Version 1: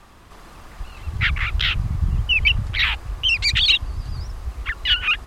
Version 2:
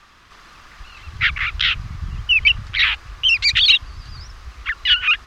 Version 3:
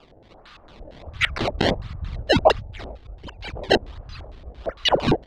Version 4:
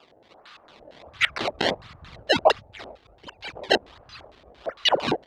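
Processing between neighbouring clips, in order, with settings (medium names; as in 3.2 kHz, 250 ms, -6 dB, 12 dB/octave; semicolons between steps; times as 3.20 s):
high-order bell 2.7 kHz +11 dB 2.8 oct; trim -7.5 dB
time-frequency box 2.59–3.71 s, 940–6200 Hz -20 dB; decimation with a swept rate 21×, swing 160% 1.4 Hz; LFO low-pass square 4.4 Hz 630–3800 Hz; trim -3 dB
high-pass 540 Hz 6 dB/octave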